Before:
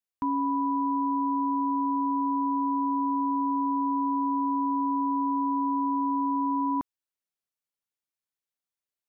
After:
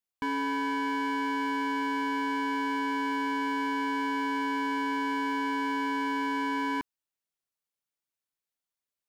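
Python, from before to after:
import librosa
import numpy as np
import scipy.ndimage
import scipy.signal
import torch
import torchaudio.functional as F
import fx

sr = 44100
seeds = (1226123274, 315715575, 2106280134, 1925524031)

y = 10.0 ** (-25.0 / 20.0) * (np.abs((x / 10.0 ** (-25.0 / 20.0) + 3.0) % 4.0 - 2.0) - 1.0)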